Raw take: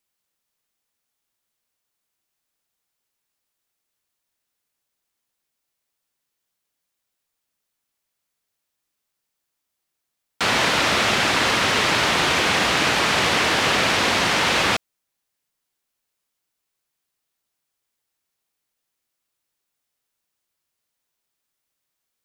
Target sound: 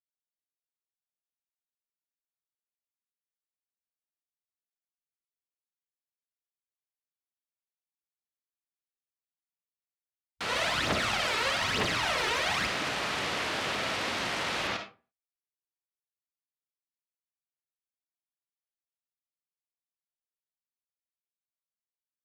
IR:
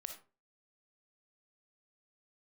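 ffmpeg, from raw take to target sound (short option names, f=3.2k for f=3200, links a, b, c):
-filter_complex "[0:a]afwtdn=0.02,asplit=3[a][b][c];[a]afade=t=out:st=10.48:d=0.02[d];[b]aphaser=in_gain=1:out_gain=1:delay=2.4:decay=0.71:speed=1.1:type=triangular,afade=t=in:st=10.48:d=0.02,afade=t=out:st=12.66:d=0.02[e];[c]afade=t=in:st=12.66:d=0.02[f];[d][e][f]amix=inputs=3:normalize=0[g];[1:a]atrim=start_sample=2205[h];[g][h]afir=irnorm=-1:irlink=0,volume=-9dB"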